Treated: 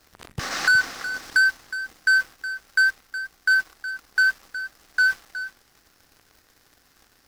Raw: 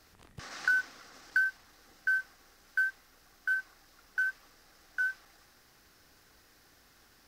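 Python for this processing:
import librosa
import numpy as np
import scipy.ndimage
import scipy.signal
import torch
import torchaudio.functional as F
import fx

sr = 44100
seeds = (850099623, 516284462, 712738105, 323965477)

p1 = fx.leveller(x, sr, passes=3)
p2 = p1 + fx.echo_single(p1, sr, ms=366, db=-12.5, dry=0)
y = p2 * 10.0 ** (4.5 / 20.0)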